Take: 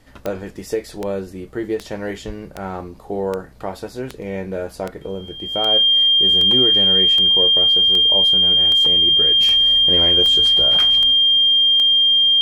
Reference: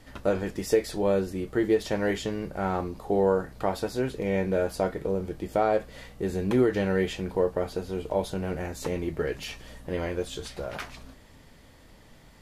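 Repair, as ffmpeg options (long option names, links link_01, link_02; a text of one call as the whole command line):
ffmpeg -i in.wav -filter_complex "[0:a]adeclick=threshold=4,bandreject=frequency=3200:width=30,asplit=3[link_01][link_02][link_03];[link_01]afade=type=out:start_time=2.26:duration=0.02[link_04];[link_02]highpass=frequency=140:width=0.5412,highpass=frequency=140:width=1.3066,afade=type=in:start_time=2.26:duration=0.02,afade=type=out:start_time=2.38:duration=0.02[link_05];[link_03]afade=type=in:start_time=2.38:duration=0.02[link_06];[link_04][link_05][link_06]amix=inputs=3:normalize=0,asetnsamples=nb_out_samples=441:pad=0,asendcmd='9.4 volume volume -6.5dB',volume=0dB" out.wav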